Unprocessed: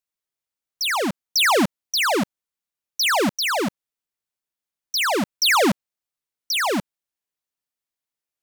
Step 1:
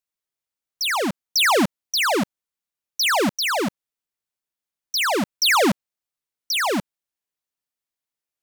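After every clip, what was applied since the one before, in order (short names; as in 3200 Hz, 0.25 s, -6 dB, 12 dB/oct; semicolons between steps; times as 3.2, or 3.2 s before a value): nothing audible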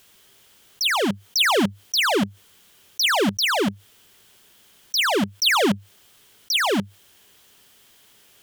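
thirty-one-band EQ 100 Hz +9 dB, 200 Hz +6 dB, 400 Hz +7 dB, 1600 Hz +3 dB, 3150 Hz +9 dB; fast leveller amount 50%; gain -5.5 dB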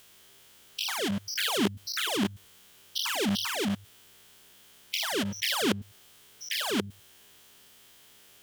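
stepped spectrum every 0.1 s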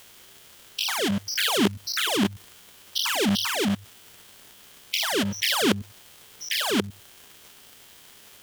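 crackle 260/s -42 dBFS; gain +5 dB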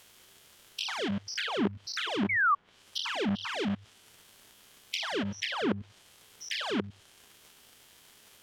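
painted sound fall, 2.29–2.55, 1100–2300 Hz -15 dBFS; treble ducked by the level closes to 1500 Hz, closed at -18 dBFS; gain -6.5 dB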